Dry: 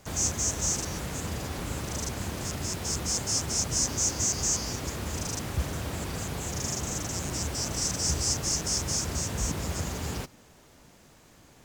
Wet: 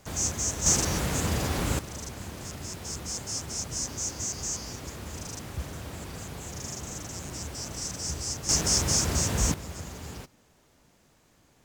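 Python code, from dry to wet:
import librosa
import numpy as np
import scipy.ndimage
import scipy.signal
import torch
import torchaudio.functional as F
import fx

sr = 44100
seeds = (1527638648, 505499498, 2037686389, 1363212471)

y = fx.gain(x, sr, db=fx.steps((0.0, -1.0), (0.66, 6.0), (1.79, -5.5), (8.49, 4.5), (9.54, -7.0)))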